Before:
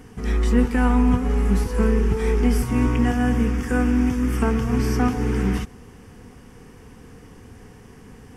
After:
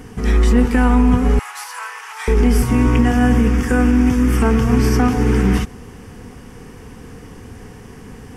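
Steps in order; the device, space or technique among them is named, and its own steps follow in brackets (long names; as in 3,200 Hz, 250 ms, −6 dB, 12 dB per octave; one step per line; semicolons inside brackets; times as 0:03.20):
clipper into limiter (hard clipping −9.5 dBFS, distortion −32 dB; brickwall limiter −13 dBFS, peak gain reduction 3.5 dB)
0:01.39–0:02.28: Butterworth high-pass 830 Hz 36 dB per octave
level +7.5 dB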